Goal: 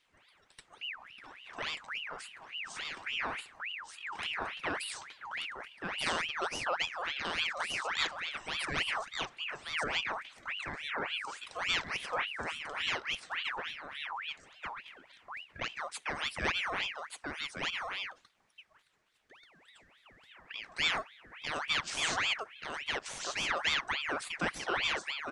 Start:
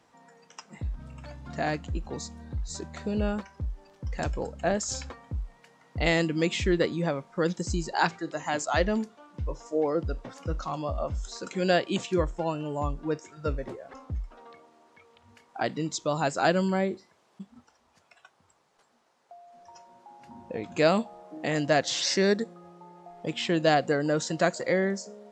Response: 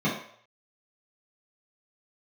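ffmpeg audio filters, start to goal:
-af "aecho=1:1:1184:0.668,aeval=exprs='val(0)*sin(2*PI*1900*n/s+1900*0.55/3.5*sin(2*PI*3.5*n/s))':channel_layout=same,volume=-6.5dB"

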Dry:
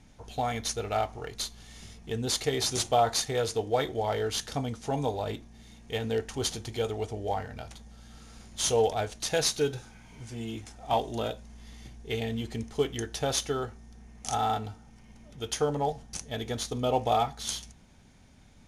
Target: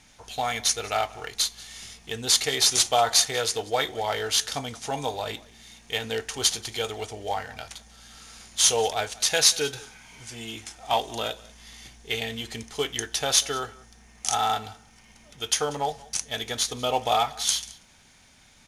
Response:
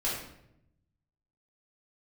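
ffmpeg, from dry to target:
-af "tiltshelf=frequency=720:gain=-8,aecho=1:1:187:0.0794,volume=2dB"

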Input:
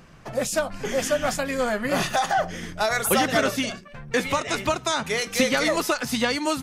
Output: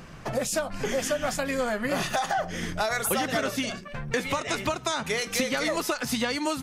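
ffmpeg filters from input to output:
ffmpeg -i in.wav -af "acompressor=threshold=-32dB:ratio=3,volume=5dB" out.wav

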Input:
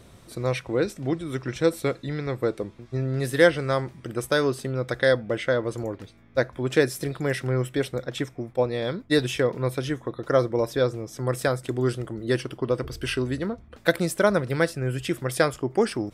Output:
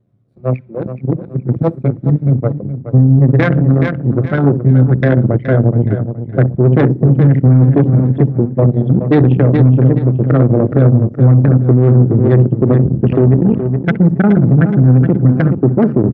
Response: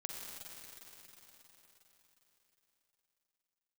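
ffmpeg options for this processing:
-filter_complex "[0:a]acrossover=split=3200[link_01][link_02];[link_02]acompressor=threshold=-43dB:ratio=4:attack=1:release=60[link_03];[link_01][link_03]amix=inputs=2:normalize=0,asplit=2[link_04][link_05];[link_05]adelay=63,lowpass=frequency=4300:poles=1,volume=-10dB,asplit=2[link_06][link_07];[link_07]adelay=63,lowpass=frequency=4300:poles=1,volume=0.39,asplit=2[link_08][link_09];[link_09]adelay=63,lowpass=frequency=4300:poles=1,volume=0.39,asplit=2[link_10][link_11];[link_11]adelay=63,lowpass=frequency=4300:poles=1,volume=0.39[link_12];[link_06][link_08][link_10][link_12]amix=inputs=4:normalize=0[link_13];[link_04][link_13]amix=inputs=2:normalize=0,asubboost=boost=11.5:cutoff=180,aeval=exprs='max(val(0),0)':channel_layout=same,bandreject=frequency=930:width=14,asplit=2[link_14][link_15];[1:a]atrim=start_sample=2205,asetrate=61740,aresample=44100[link_16];[link_15][link_16]afir=irnorm=-1:irlink=0,volume=-6dB[link_17];[link_14][link_17]amix=inputs=2:normalize=0,anlmdn=6310,highpass=frequency=110:width=0.5412,highpass=frequency=110:width=1.3066,aecho=1:1:421|842|1263:0.282|0.0761|0.0205,alimiter=level_in=15dB:limit=-1dB:release=50:level=0:latency=1,volume=-1dB"

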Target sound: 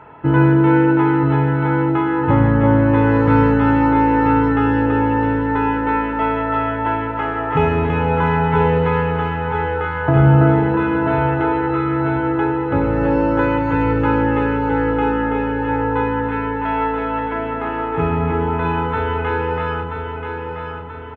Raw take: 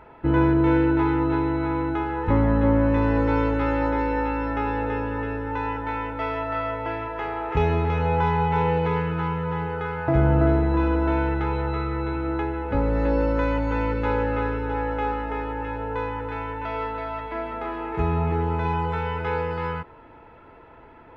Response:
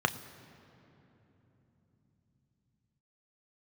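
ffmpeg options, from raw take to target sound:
-filter_complex "[0:a]aecho=1:1:982|1964|2946|3928|4910:0.473|0.218|0.1|0.0461|0.0212[link_01];[1:a]atrim=start_sample=2205,afade=type=out:start_time=0.39:duration=0.01,atrim=end_sample=17640[link_02];[link_01][link_02]afir=irnorm=-1:irlink=0,volume=-4dB"

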